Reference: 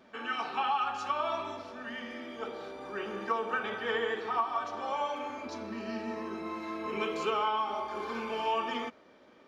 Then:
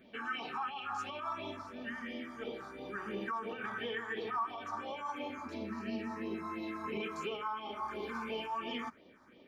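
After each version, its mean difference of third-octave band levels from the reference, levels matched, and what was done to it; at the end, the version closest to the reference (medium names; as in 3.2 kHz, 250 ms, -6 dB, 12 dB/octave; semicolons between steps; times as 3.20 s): 4.5 dB: peak limiter -28.5 dBFS, peak gain reduction 11 dB; phase shifter stages 4, 2.9 Hz, lowest notch 470–1500 Hz; trim +1.5 dB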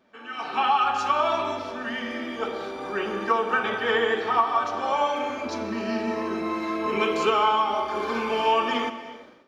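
1.5 dB: gated-style reverb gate 400 ms flat, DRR 11.5 dB; level rider gain up to 15 dB; trim -5.5 dB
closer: second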